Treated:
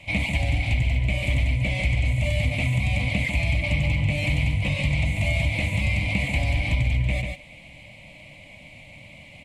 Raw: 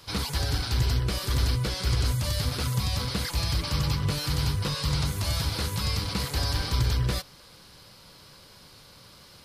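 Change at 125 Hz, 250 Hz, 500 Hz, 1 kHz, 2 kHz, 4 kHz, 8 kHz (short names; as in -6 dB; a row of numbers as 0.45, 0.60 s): +4.0, +4.0, +3.5, -2.5, +11.0, -3.5, -7.5 dB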